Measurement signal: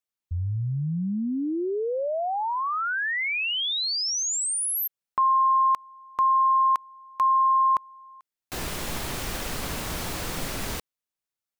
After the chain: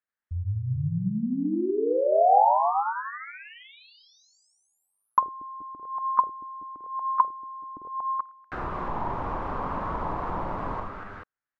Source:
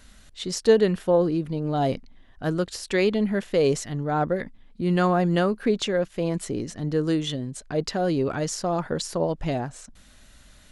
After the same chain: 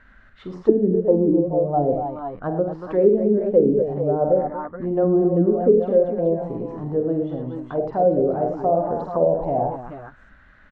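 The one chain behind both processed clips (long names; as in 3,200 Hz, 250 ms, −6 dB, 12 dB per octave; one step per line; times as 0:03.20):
on a send: multi-tap delay 48/81/104/235/426/436 ms −7/−10.5/−9/−8.5/−11.5/−10.5 dB
on the sum: envelope-controlled low-pass 300–1,700 Hz down, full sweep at −14 dBFS
level −3 dB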